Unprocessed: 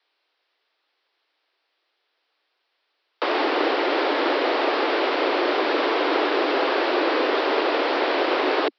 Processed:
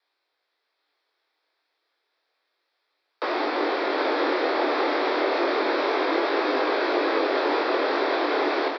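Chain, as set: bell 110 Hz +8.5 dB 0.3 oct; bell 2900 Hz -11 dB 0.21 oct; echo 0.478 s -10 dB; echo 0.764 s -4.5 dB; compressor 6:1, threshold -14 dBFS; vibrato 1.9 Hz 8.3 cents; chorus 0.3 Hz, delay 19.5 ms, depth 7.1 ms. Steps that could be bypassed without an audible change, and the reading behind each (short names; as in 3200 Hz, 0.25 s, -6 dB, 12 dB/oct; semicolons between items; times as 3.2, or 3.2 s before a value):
bell 110 Hz: input band starts at 230 Hz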